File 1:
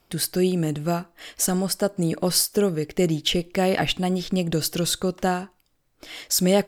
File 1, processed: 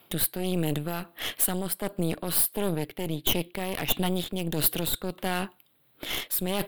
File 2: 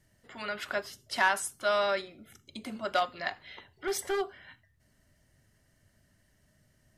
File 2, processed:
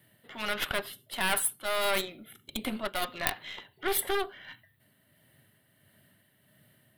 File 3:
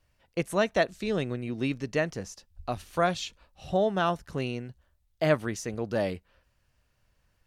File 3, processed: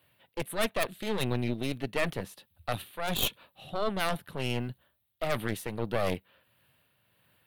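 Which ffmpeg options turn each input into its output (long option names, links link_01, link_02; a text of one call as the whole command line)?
ffmpeg -i in.wav -filter_complex "[0:a]highpass=frequency=110:width=0.5412,highpass=frequency=110:width=1.3066,highshelf=frequency=4500:width_type=q:width=3:gain=-8,areverse,acompressor=threshold=-29dB:ratio=6,areverse,aeval=exprs='0.133*(cos(1*acos(clip(val(0)/0.133,-1,1)))-cos(1*PI/2))+0.0473*(cos(4*acos(clip(val(0)/0.133,-1,1)))-cos(4*PI/2))':channel_layout=same,acrossover=split=2300[link_01][link_02];[link_01]alimiter=limit=-22.5dB:level=0:latency=1[link_03];[link_02]asoftclip=type=tanh:threshold=-31dB[link_04];[link_03][link_04]amix=inputs=2:normalize=0,tremolo=f=1.5:d=0.39,aexciter=amount=5.8:drive=6.5:freq=9100,volume=5.5dB" out.wav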